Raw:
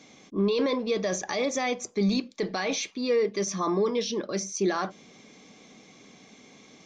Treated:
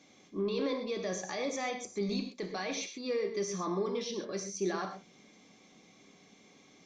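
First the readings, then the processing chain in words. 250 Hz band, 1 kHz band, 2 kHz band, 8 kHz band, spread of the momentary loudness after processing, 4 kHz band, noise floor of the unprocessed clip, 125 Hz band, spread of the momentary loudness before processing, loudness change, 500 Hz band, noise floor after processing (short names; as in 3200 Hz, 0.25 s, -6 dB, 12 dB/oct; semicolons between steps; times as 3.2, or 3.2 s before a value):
-8.5 dB, -7.0 dB, -7.0 dB, -7.5 dB, 5 LU, -7.5 dB, -54 dBFS, -8.0 dB, 6 LU, -7.5 dB, -7.5 dB, -61 dBFS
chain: non-linear reverb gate 0.15 s flat, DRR 5 dB; gain -8.5 dB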